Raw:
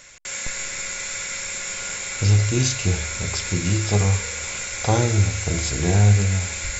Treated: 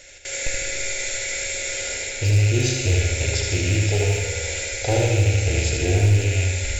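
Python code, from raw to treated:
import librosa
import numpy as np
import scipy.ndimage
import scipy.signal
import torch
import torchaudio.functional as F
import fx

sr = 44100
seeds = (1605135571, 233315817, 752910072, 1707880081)

p1 = fx.rattle_buzz(x, sr, strikes_db=-25.0, level_db=-17.0)
p2 = fx.high_shelf(p1, sr, hz=4700.0, db=-9.5)
p3 = fx.rider(p2, sr, range_db=5, speed_s=0.5)
p4 = p2 + (p3 * 10.0 ** (2.0 / 20.0))
p5 = np.clip(p4, -10.0 ** (-7.0 / 20.0), 10.0 ** (-7.0 / 20.0))
p6 = fx.fixed_phaser(p5, sr, hz=460.0, stages=4)
p7 = p6 + fx.echo_feedback(p6, sr, ms=77, feedback_pct=58, wet_db=-4.5, dry=0)
p8 = fx.rev_fdn(p7, sr, rt60_s=2.1, lf_ratio=0.95, hf_ratio=0.75, size_ms=33.0, drr_db=11.0)
y = p8 * 10.0 ** (-4.0 / 20.0)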